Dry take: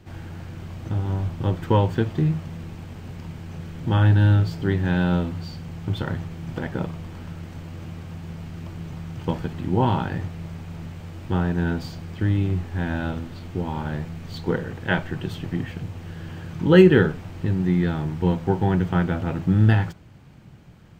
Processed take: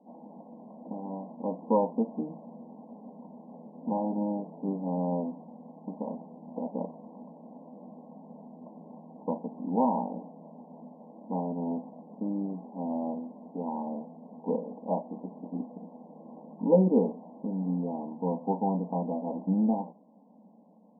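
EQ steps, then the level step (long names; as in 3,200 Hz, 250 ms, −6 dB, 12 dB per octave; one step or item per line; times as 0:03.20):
linear-phase brick-wall band-pass 190–1,100 Hz
phaser with its sweep stopped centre 360 Hz, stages 6
0.0 dB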